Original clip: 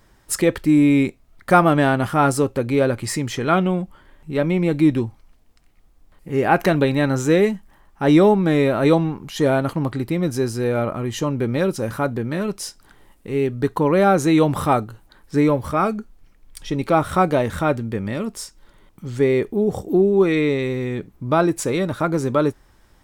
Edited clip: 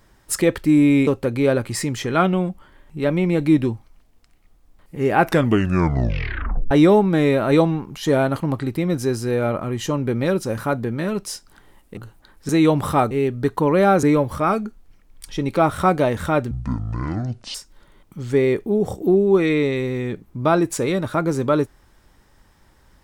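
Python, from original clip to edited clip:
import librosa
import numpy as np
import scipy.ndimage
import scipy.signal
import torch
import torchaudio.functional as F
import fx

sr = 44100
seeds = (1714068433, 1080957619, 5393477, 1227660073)

y = fx.edit(x, sr, fx.cut(start_s=1.07, length_s=1.33),
    fx.tape_stop(start_s=6.53, length_s=1.51),
    fx.swap(start_s=13.3, length_s=0.92, other_s=14.84, other_length_s=0.52),
    fx.speed_span(start_s=17.84, length_s=0.57, speed=0.55), tone=tone)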